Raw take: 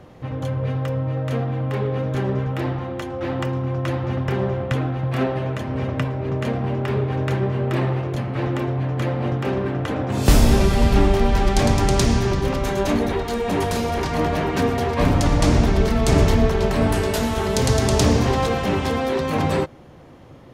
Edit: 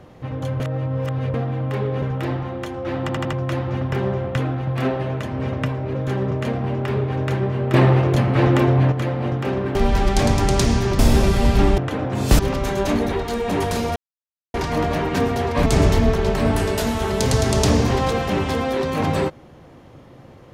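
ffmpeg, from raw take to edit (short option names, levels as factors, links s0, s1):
-filter_complex "[0:a]asplit=18[s0][s1][s2][s3][s4][s5][s6][s7][s8][s9][s10][s11][s12][s13][s14][s15][s16][s17];[s0]atrim=end=0.602[s18];[s1]atrim=start=0.598:end=1.342,asetpts=PTS-STARTPTS,areverse[s19];[s2]atrim=start=1.338:end=2.022[s20];[s3]atrim=start=2.378:end=3.452[s21];[s4]atrim=start=3.368:end=3.452[s22];[s5]atrim=start=3.368:end=3.452[s23];[s6]atrim=start=3.368:end=3.452[s24];[s7]atrim=start=3.688:end=6.312[s25];[s8]atrim=start=2.018:end=2.382[s26];[s9]atrim=start=6.308:end=7.742[s27];[s10]atrim=start=7.738:end=8.922,asetpts=PTS-STARTPTS,volume=2.37[s28];[s11]atrim=start=8.918:end=9.752[s29];[s12]atrim=start=11.148:end=12.392[s30];[s13]atrim=start=10.358:end=11.152[s31];[s14]atrim=start=9.748:end=10.362[s32];[s15]atrim=start=12.388:end=13.96,asetpts=PTS-STARTPTS,afade=t=out:st=1.568:d=0.004:c=hsin,apad=pad_dur=0.58[s33];[s16]atrim=start=13.96:end=15.082,asetpts=PTS-STARTPTS,afade=t=in:d=0.004:c=hsin[s34];[s17]atrim=start=16.018[s35];[s18][s19]acrossfade=d=0.004:c1=hsin:c2=hsin[s36];[s36][s20]acrossfade=d=0.004:c1=hsin:c2=hsin[s37];[s37][s21]acrossfade=d=0.004:c1=hsin:c2=hsin[s38];[s38][s22]acrossfade=d=0.004:c1=hsin:c2=hsin[s39];[s39][s23]acrossfade=d=0.004:c1=hsin:c2=hsin[s40];[s40][s24]acrossfade=d=0.004:c1=hsin:c2=hsin[s41];[s41][s25]acrossfade=d=0.004:c1=hsin:c2=hsin[s42];[s42][s26]acrossfade=d=0.004:c1=hsin:c2=hsin[s43];[s43][s27]acrossfade=d=0.004:c1=hsin:c2=hsin[s44];[s44][s28]acrossfade=d=0.004:c1=hsin:c2=hsin[s45];[s45][s29]acrossfade=d=0.004:c1=hsin:c2=hsin[s46];[s46][s30]acrossfade=d=0.004:c1=hsin:c2=hsin[s47];[s47][s31]acrossfade=d=0.004:c1=hsin:c2=hsin[s48];[s48][s32]acrossfade=d=0.004:c1=hsin:c2=hsin[s49];[s33][s34]concat=n=2:v=0:a=1[s50];[s49][s50]acrossfade=d=0.004:c1=hsin:c2=hsin[s51];[s51][s35]acrossfade=d=0.004:c1=hsin:c2=hsin"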